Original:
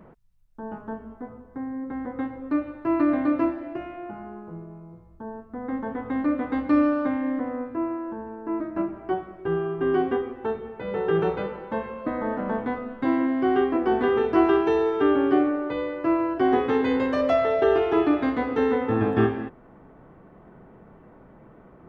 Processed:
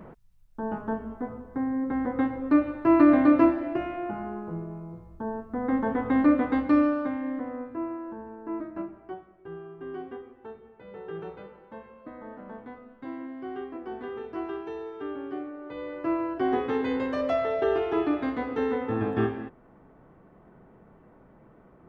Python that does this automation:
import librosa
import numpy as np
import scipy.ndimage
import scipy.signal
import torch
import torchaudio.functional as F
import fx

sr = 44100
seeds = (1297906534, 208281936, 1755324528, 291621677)

y = fx.gain(x, sr, db=fx.line((6.29, 4.0), (7.11, -5.0), (8.59, -5.0), (9.31, -15.0), (15.52, -15.0), (15.96, -5.0)))